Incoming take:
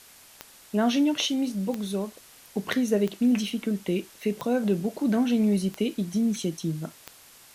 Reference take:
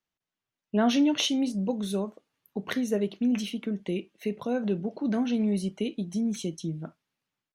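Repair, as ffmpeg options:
-af "adeclick=t=4,afwtdn=0.0032,asetnsamples=n=441:p=0,asendcmd='2.31 volume volume -3.5dB',volume=0dB"

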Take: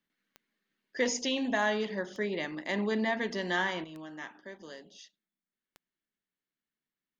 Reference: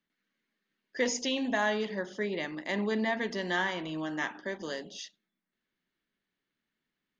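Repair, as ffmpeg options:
-af "adeclick=t=4,asetnsamples=n=441:p=0,asendcmd='3.84 volume volume 9.5dB',volume=0dB"

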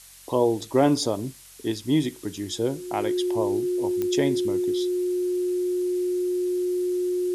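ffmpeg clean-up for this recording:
-af "adeclick=t=4,bandreject=f=46.1:t=h:w=4,bandreject=f=92.2:t=h:w=4,bandreject=f=138.3:t=h:w=4,bandreject=f=184.4:t=h:w=4,bandreject=f=360:w=30,afftdn=nr=27:nf=-43"

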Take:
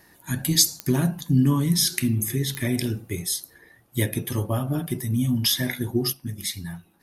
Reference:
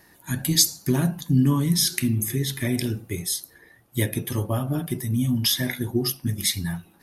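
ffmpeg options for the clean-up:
-af "adeclick=t=4,asetnsamples=n=441:p=0,asendcmd='6.13 volume volume 6dB',volume=0dB"

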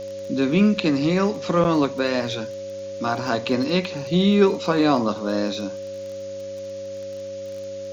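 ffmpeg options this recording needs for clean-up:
-af "adeclick=t=4,bandreject=f=98.5:t=h:w=4,bandreject=f=197:t=h:w=4,bandreject=f=295.5:t=h:w=4,bandreject=f=394:t=h:w=4,bandreject=f=550:w=30,afftdn=nr=30:nf=-33"

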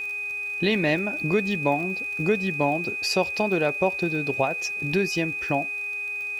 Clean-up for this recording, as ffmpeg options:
-af "adeclick=t=4,bandreject=f=405.4:t=h:w=4,bandreject=f=810.8:t=h:w=4,bandreject=f=1.2162k:t=h:w=4,bandreject=f=1.6216k:t=h:w=4,bandreject=f=2.027k:t=h:w=4,bandreject=f=2.4324k:t=h:w=4,bandreject=f=2.5k:w=30,agate=range=-21dB:threshold=-23dB"

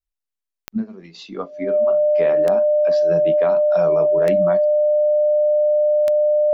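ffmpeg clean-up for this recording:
-af "adeclick=t=4,bandreject=f=600:w=30"

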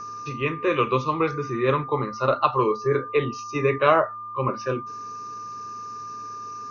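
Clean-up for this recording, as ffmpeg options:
-af "bandreject=f=107.9:t=h:w=4,bandreject=f=215.8:t=h:w=4,bandreject=f=323.7:t=h:w=4,bandreject=f=431.6:t=h:w=4,bandreject=f=1.2k:w=30"

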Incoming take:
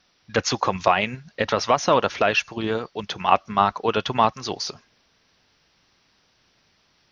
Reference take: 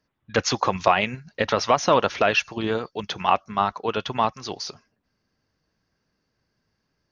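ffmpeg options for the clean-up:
-af "agate=range=-21dB:threshold=-56dB,asetnsamples=n=441:p=0,asendcmd='3.32 volume volume -3.5dB',volume=0dB"

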